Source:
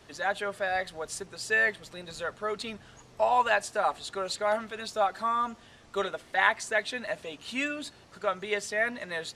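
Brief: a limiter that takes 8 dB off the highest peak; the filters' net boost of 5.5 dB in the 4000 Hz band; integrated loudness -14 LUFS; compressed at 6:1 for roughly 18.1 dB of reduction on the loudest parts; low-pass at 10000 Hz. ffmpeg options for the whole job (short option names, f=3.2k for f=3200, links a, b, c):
-af "lowpass=10k,equalizer=f=4k:t=o:g=6.5,acompressor=threshold=-39dB:ratio=6,volume=29.5dB,alimiter=limit=-3.5dB:level=0:latency=1"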